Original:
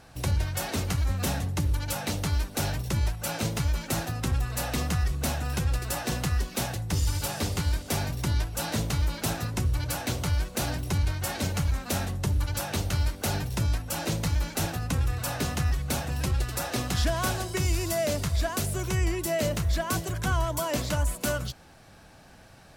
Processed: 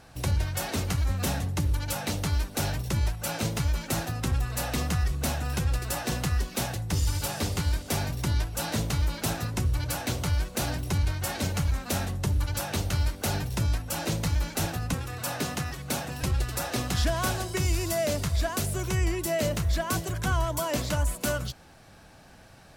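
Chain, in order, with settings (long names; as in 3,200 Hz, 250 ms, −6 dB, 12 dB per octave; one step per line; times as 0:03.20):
0:14.94–0:16.23: high-pass filter 140 Hz 12 dB per octave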